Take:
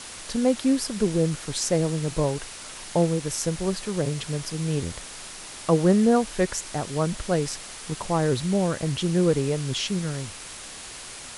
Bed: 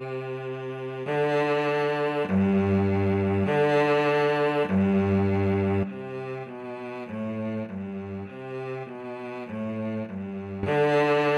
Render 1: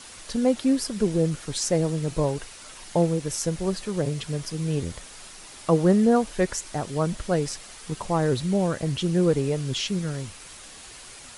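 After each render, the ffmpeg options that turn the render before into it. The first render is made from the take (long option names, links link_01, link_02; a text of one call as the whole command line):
ffmpeg -i in.wav -af "afftdn=noise_reduction=6:noise_floor=-40" out.wav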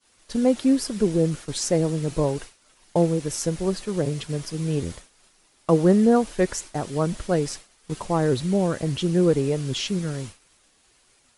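ffmpeg -i in.wav -af "agate=range=-33dB:threshold=-32dB:ratio=3:detection=peak,equalizer=frequency=330:width=1.1:gain=3" out.wav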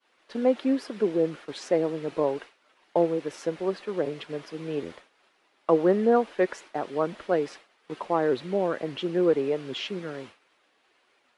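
ffmpeg -i in.wav -filter_complex "[0:a]highpass=frequency=84:poles=1,acrossover=split=270 3500:gain=0.1 1 0.0708[link_01][link_02][link_03];[link_01][link_02][link_03]amix=inputs=3:normalize=0" out.wav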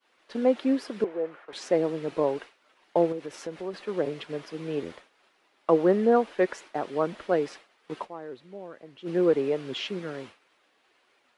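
ffmpeg -i in.wav -filter_complex "[0:a]asettb=1/sr,asplit=3[link_01][link_02][link_03];[link_01]atrim=end=1.044[link_04];[link_02]atrim=start=1.04:end=1.53,asetpts=PTS-STARTPTS,afade=type=in:duration=0.004:curve=qsin,afade=type=out:start_time=0.486:duration=0.004:curve=qsin,acrossover=split=480 2200:gain=0.126 1 0.1[link_05][link_06][link_07];[link_05][link_06][link_07]amix=inputs=3:normalize=0[link_08];[link_03]atrim=start=1.526[link_09];[link_04][link_08]acrossfade=duration=0.004:curve1=hsin:curve2=qsin[link_10];[link_10][link_09]acrossfade=duration=0.004:curve1=qsin:curve2=hsin,asettb=1/sr,asplit=3[link_11][link_12][link_13];[link_11]atrim=end=3.124[link_14];[link_12]atrim=start=3.12:end=3.74,asetpts=PTS-STARTPTS,afade=type=in:duration=0.004:curve=qsin,afade=type=out:start_time=0.616:duration=0.004:curve=qsin,acompressor=threshold=-35dB:ratio=2:attack=3.2:release=140:knee=1:detection=peak[link_15];[link_13]atrim=start=3.736[link_16];[link_14][link_15]acrossfade=duration=0.004:curve1=hsin:curve2=qsin[link_17];[link_17][link_16]acrossfade=duration=0.004:curve1=qsin:curve2=hsin,asplit=3[link_18][link_19][link_20];[link_18]atrim=end=8.23,asetpts=PTS-STARTPTS,afade=type=out:start_time=8.04:duration=0.19:curve=exp:silence=0.16788[link_21];[link_19]atrim=start=8.23:end=8.89,asetpts=PTS-STARTPTS,volume=-15.5dB[link_22];[link_20]atrim=start=8.89,asetpts=PTS-STARTPTS,afade=type=in:duration=0.19:curve=exp:silence=0.16788[link_23];[link_21][link_22][link_23]concat=n=3:v=0:a=1" out.wav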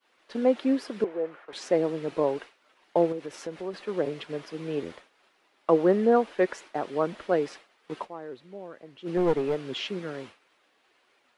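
ffmpeg -i in.wav -filter_complex "[0:a]asettb=1/sr,asplit=3[link_01][link_02][link_03];[link_01]atrim=end=9.174[link_04];[link_02]atrim=start=9.17:end=9.63,asetpts=PTS-STARTPTS,afade=type=in:duration=0.004:curve=qsin,afade=type=out:start_time=0.456:duration=0.004:curve=qsin,aeval=exprs='clip(val(0),-1,0.0562)':channel_layout=same[link_05];[link_03]atrim=start=9.626[link_06];[link_04][link_05]acrossfade=duration=0.004:curve1=hsin:curve2=qsin[link_07];[link_07][link_06]acrossfade=duration=0.004:curve1=qsin:curve2=hsin" out.wav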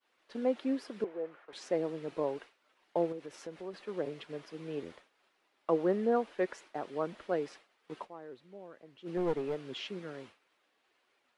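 ffmpeg -i in.wav -af "volume=-8dB" out.wav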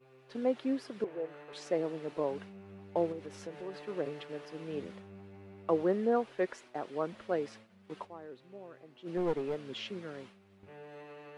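ffmpeg -i in.wav -i bed.wav -filter_complex "[1:a]volume=-28dB[link_01];[0:a][link_01]amix=inputs=2:normalize=0" out.wav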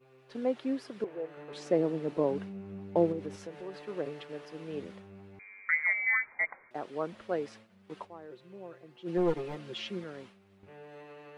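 ffmpeg -i in.wav -filter_complex "[0:a]asettb=1/sr,asplit=3[link_01][link_02][link_03];[link_01]atrim=end=1.374[link_04];[link_02]atrim=start=1.37:end=3.36,asetpts=PTS-STARTPTS,afade=type=in:duration=0.004:curve=qsin,afade=type=out:start_time=1.986:duration=0.004:curve=qsin,equalizer=frequency=200:width=0.5:gain=9[link_05];[link_03]atrim=start=3.356[link_06];[link_04][link_05]acrossfade=duration=0.004:curve1=hsin:curve2=qsin[link_07];[link_07][link_06]acrossfade=duration=0.004:curve1=qsin:curve2=hsin,asettb=1/sr,asplit=3[link_08][link_09][link_10];[link_08]atrim=end=5.394[link_11];[link_09]atrim=start=5.39:end=6.71,asetpts=PTS-STARTPTS,afade=type=in:duration=0.004:curve=qsin,afade=type=out:start_time=1.316:duration=0.004:curve=qsin,lowpass=frequency=2100:width_type=q:width=0.5098,lowpass=frequency=2100:width_type=q:width=0.6013,lowpass=frequency=2100:width_type=q:width=0.9,lowpass=frequency=2100:width_type=q:width=2.563,afreqshift=-2500[link_12];[link_10]atrim=start=6.706[link_13];[link_11][link_12]acrossfade=duration=0.004:curve1=hsin:curve2=qsin[link_14];[link_14][link_13]acrossfade=duration=0.004:curve1=qsin:curve2=hsin,asettb=1/sr,asplit=3[link_15][link_16][link_17];[link_15]atrim=end=8.304[link_18];[link_16]atrim=start=8.3:end=10.04,asetpts=PTS-STARTPTS,afade=type=in:duration=0.004:curve=qsin,afade=type=out:start_time=1.736:duration=0.004:curve=qsin,aecho=1:1:5.7:0.78,atrim=end_sample=76734[link_19];[link_17]atrim=start=10.036[link_20];[link_18][link_19]acrossfade=duration=0.004:curve1=hsin:curve2=qsin[link_21];[link_21][link_20]acrossfade=duration=0.004:curve1=qsin:curve2=hsin" out.wav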